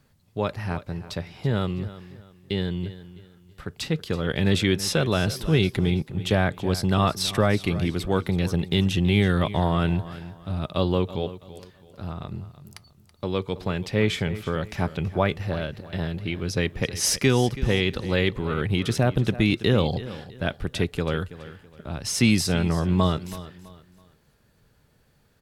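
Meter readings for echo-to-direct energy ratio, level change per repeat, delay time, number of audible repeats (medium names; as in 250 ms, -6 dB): -15.0 dB, -10.0 dB, 328 ms, 2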